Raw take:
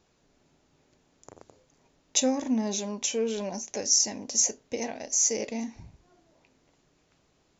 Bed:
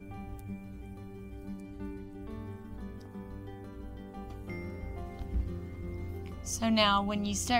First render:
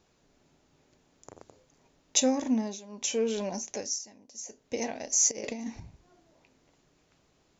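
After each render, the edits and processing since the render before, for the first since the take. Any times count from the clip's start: 2.54–3.13 s: dip -14.5 dB, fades 0.25 s; 3.68–4.77 s: dip -18 dB, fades 0.32 s; 5.31–5.80 s: compressor with a negative ratio -35 dBFS, ratio -0.5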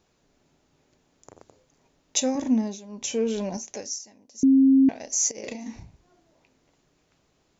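2.35–3.57 s: bass shelf 260 Hz +9.5 dB; 4.43–4.89 s: bleep 268 Hz -13 dBFS; 5.41–5.85 s: doubling 32 ms -6 dB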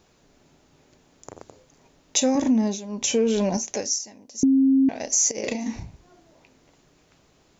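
in parallel at +3 dB: peak limiter -20.5 dBFS, peak gain reduction 11 dB; on the sum: compression, threshold -16 dBFS, peak gain reduction 5 dB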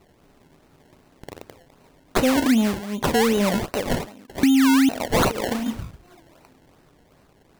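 in parallel at -5.5 dB: saturation -23 dBFS, distortion -9 dB; on the sum: decimation with a swept rate 25×, swing 100% 2.6 Hz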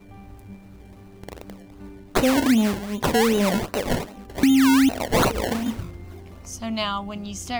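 add bed -0.5 dB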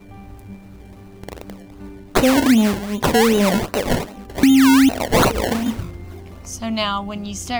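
trim +4.5 dB

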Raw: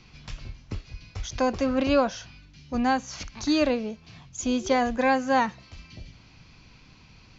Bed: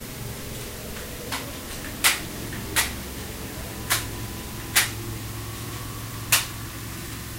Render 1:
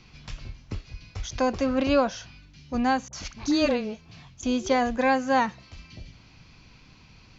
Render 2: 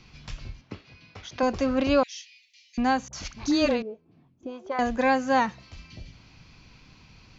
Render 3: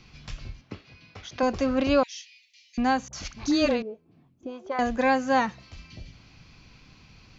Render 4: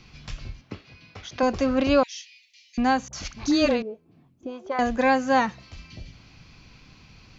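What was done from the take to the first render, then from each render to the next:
3.08–4.43 s: phase dispersion highs, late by 49 ms, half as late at 700 Hz
0.61–1.43 s: band-pass 170–3900 Hz; 2.03–2.78 s: steep high-pass 1.9 kHz 96 dB/octave; 3.82–4.79 s: auto-wah 270–1200 Hz, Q 2.2, up, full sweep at -19 dBFS
band-stop 940 Hz, Q 22
trim +2 dB

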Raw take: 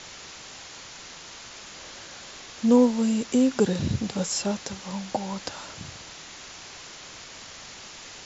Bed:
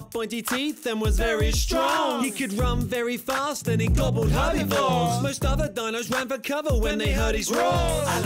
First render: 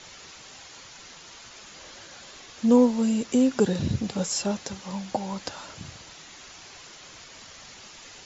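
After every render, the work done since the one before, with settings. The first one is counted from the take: noise reduction 6 dB, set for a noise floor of -44 dBFS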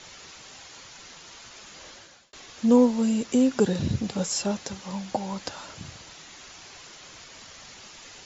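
1.88–2.33 s: fade out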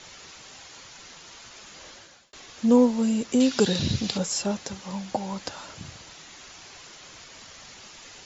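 3.40–4.18 s: peaking EQ 4.1 kHz +12.5 dB 1.6 oct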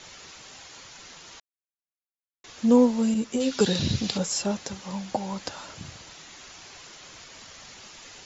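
1.40–2.44 s: mute; 3.14–3.61 s: three-phase chorus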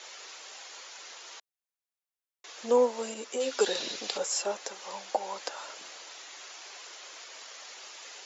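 high-pass 410 Hz 24 dB/octave; dynamic bell 4.2 kHz, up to -4 dB, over -43 dBFS, Q 0.94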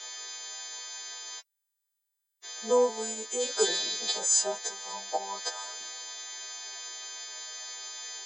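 partials quantised in pitch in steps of 2 st; comb of notches 280 Hz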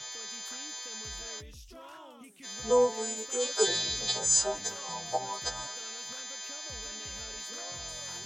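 add bed -26 dB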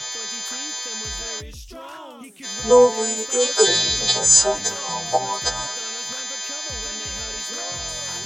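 trim +11 dB; peak limiter -3 dBFS, peak gain reduction 2.5 dB

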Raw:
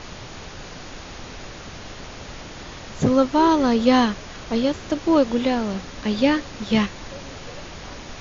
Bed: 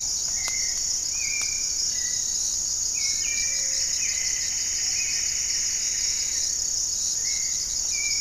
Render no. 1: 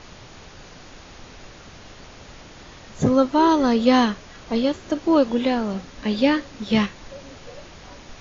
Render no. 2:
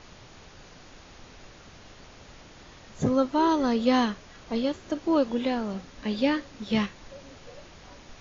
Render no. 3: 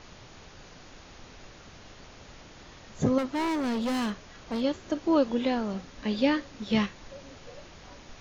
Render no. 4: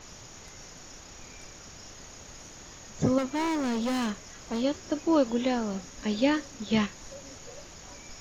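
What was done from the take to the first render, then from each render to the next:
noise print and reduce 6 dB
trim -6 dB
3.18–4.61 s: hard clipper -26.5 dBFS
add bed -24.5 dB

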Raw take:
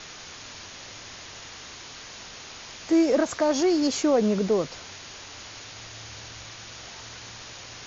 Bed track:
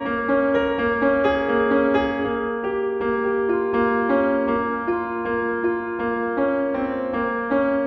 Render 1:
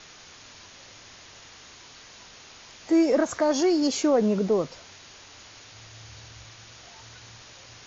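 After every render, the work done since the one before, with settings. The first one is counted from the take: noise print and reduce 6 dB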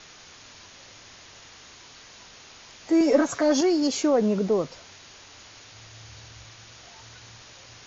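3.00–3.61 s: comb 7.1 ms, depth 82%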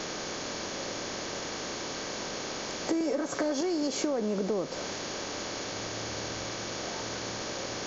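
spectral levelling over time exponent 0.6; compression 16:1, threshold -26 dBFS, peak gain reduction 15 dB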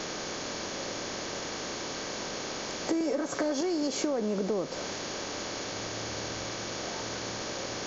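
no audible change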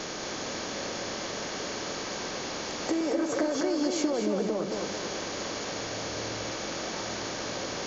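tape echo 225 ms, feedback 52%, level -3 dB, low-pass 4.1 kHz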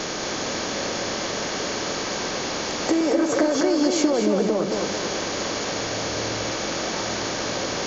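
trim +7.5 dB

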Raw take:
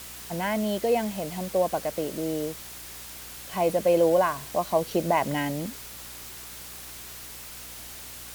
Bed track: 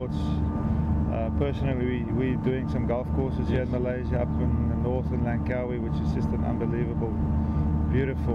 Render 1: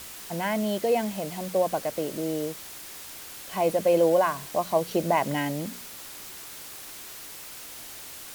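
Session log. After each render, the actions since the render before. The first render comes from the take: de-hum 60 Hz, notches 4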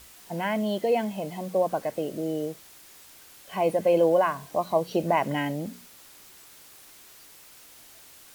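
noise print and reduce 9 dB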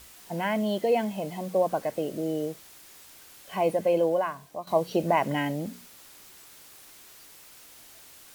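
3.54–4.67 s: fade out, to -11.5 dB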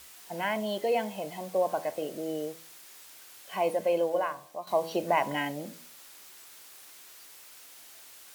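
bass shelf 280 Hz -12 dB; de-hum 81.65 Hz, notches 15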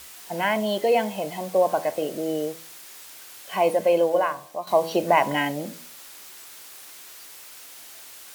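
trim +7 dB

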